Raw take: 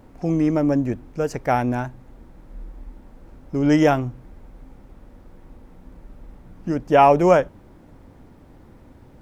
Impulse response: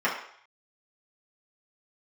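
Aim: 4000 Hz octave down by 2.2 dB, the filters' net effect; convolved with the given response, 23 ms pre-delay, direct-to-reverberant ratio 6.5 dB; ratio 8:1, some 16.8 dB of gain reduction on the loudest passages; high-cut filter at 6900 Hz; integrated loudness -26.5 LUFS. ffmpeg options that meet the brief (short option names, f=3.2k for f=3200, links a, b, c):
-filter_complex "[0:a]lowpass=6.9k,equalizer=f=4k:t=o:g=-3,acompressor=threshold=-27dB:ratio=8,asplit=2[a][b];[1:a]atrim=start_sample=2205,adelay=23[c];[b][c]afir=irnorm=-1:irlink=0,volume=-21dB[d];[a][d]amix=inputs=2:normalize=0,volume=5.5dB"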